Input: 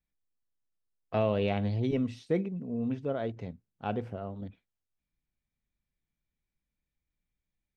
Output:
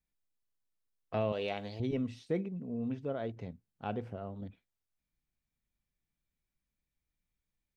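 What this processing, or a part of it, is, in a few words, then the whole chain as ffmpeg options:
parallel compression: -filter_complex "[0:a]asettb=1/sr,asplit=3[link_01][link_02][link_03];[link_01]atrim=end=1.324[link_04];[link_02]atrim=start=1.32:end=1.8,asetpts=PTS-STARTPTS,afade=type=in:duration=0.004:curve=qsin,afade=type=out:start_time=0.476:duration=0.004:curve=qsin,bass=frequency=250:gain=-14,treble=frequency=4000:gain=10[link_05];[link_03]atrim=start=1.796[link_06];[link_04][link_05]acrossfade=duration=0.004:curve1=hsin:curve2=qsin[link_07];[link_07][link_06]acrossfade=duration=0.004:curve1=qsin:curve2=hsin,asplit=2[link_08][link_09];[link_09]acompressor=threshold=-41dB:ratio=6,volume=-4dB[link_10];[link_08][link_10]amix=inputs=2:normalize=0,volume=-5.5dB"

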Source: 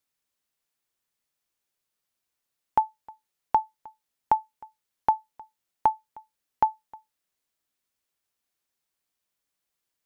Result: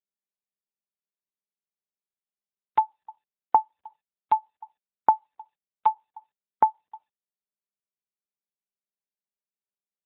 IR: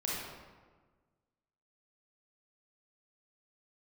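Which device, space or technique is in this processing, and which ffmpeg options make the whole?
mobile call with aggressive noise cancelling: -af "highpass=frequency=140:poles=1,afftdn=noise_reduction=29:noise_floor=-45,volume=3.5dB" -ar 8000 -c:a libopencore_amrnb -b:a 12200

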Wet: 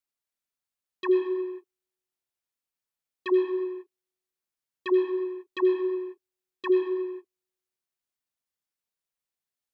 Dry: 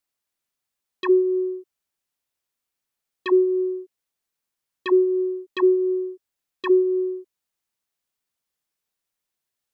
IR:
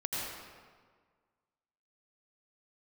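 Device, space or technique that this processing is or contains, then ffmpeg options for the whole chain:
keyed gated reverb: -filter_complex "[0:a]asplit=3[link_01][link_02][link_03];[1:a]atrim=start_sample=2205[link_04];[link_02][link_04]afir=irnorm=-1:irlink=0[link_05];[link_03]apad=whole_len=429250[link_06];[link_05][link_06]sidechaingate=range=-57dB:threshold=-32dB:ratio=16:detection=peak,volume=-7.5dB[link_07];[link_01][link_07]amix=inputs=2:normalize=0,volume=-7.5dB"

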